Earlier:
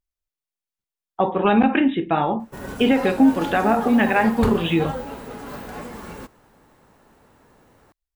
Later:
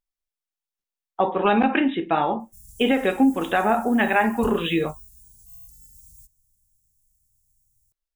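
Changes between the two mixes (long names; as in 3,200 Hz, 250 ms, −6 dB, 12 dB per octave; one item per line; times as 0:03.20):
background: add inverse Chebyshev band-stop filter 370–2,000 Hz, stop band 70 dB
master: add parametric band 82 Hz −11 dB 2.4 octaves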